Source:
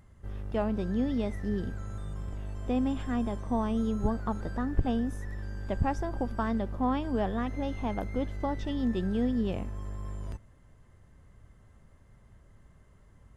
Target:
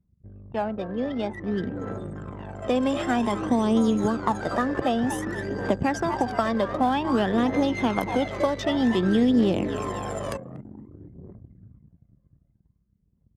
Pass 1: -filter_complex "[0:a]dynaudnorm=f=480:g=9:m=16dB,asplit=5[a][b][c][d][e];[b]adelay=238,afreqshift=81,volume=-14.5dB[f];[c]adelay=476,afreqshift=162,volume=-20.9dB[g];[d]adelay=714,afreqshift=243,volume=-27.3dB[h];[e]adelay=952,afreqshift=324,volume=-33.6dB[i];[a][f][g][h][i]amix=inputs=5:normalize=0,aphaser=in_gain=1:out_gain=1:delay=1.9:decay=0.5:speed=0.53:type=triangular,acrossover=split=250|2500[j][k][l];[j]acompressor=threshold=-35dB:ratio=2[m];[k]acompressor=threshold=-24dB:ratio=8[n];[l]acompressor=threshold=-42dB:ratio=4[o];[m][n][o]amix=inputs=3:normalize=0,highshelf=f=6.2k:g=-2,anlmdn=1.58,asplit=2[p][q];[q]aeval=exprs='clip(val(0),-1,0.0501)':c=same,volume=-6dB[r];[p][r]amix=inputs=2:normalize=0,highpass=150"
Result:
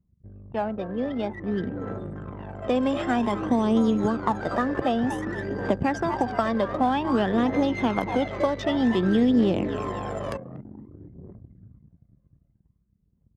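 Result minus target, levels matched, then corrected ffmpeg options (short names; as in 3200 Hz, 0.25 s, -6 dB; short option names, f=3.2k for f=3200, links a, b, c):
8000 Hz band -7.0 dB
-filter_complex "[0:a]dynaudnorm=f=480:g=9:m=16dB,asplit=5[a][b][c][d][e];[b]adelay=238,afreqshift=81,volume=-14.5dB[f];[c]adelay=476,afreqshift=162,volume=-20.9dB[g];[d]adelay=714,afreqshift=243,volume=-27.3dB[h];[e]adelay=952,afreqshift=324,volume=-33.6dB[i];[a][f][g][h][i]amix=inputs=5:normalize=0,aphaser=in_gain=1:out_gain=1:delay=1.9:decay=0.5:speed=0.53:type=triangular,acrossover=split=250|2500[j][k][l];[j]acompressor=threshold=-35dB:ratio=2[m];[k]acompressor=threshold=-24dB:ratio=8[n];[l]acompressor=threshold=-42dB:ratio=4[o];[m][n][o]amix=inputs=3:normalize=0,highshelf=f=6.2k:g=6,anlmdn=1.58,asplit=2[p][q];[q]aeval=exprs='clip(val(0),-1,0.0501)':c=same,volume=-6dB[r];[p][r]amix=inputs=2:normalize=0,highpass=150"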